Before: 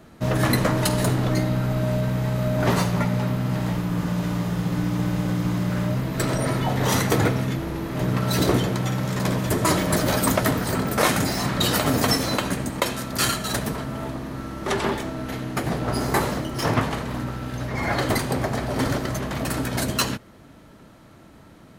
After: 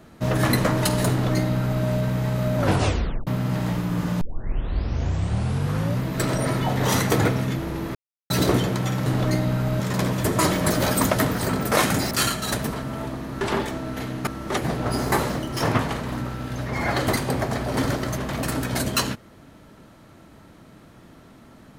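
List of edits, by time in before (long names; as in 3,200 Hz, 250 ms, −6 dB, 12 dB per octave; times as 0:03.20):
0:01.10–0:01.84: duplicate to 0:09.06
0:02.58: tape stop 0.69 s
0:04.21: tape start 1.80 s
0:07.95–0:08.30: silence
0:11.37–0:13.13: remove
0:14.43–0:14.73: move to 0:15.59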